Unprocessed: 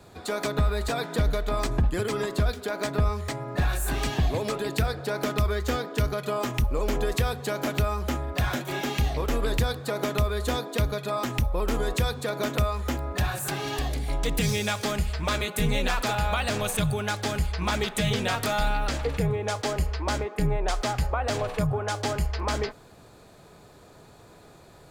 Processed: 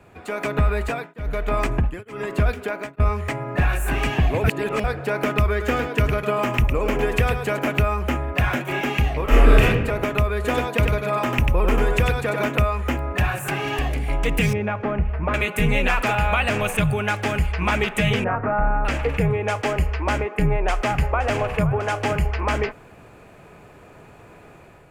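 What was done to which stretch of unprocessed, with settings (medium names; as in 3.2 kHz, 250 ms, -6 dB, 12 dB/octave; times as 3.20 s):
0.69–3.00 s: tremolo of two beating tones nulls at 1.1 Hz
4.44–4.84 s: reverse
5.50–7.59 s: delay 107 ms -7 dB
9.23–9.63 s: reverb throw, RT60 1 s, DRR -7 dB
10.35–12.47 s: delay 95 ms -4 dB
14.53–15.34 s: low-pass 1.2 kHz
18.24–18.85 s: inverse Chebyshev low-pass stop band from 4.8 kHz, stop band 60 dB
20.28–22.37 s: delay 520 ms -13 dB
whole clip: resonant high shelf 3.2 kHz -6.5 dB, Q 3; level rider gain up to 5 dB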